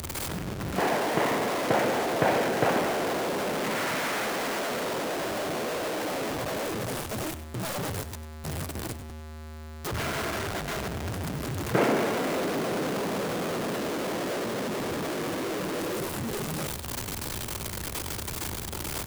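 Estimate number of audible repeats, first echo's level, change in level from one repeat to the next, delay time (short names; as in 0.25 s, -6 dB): 2, -14.0 dB, -9.0 dB, 97 ms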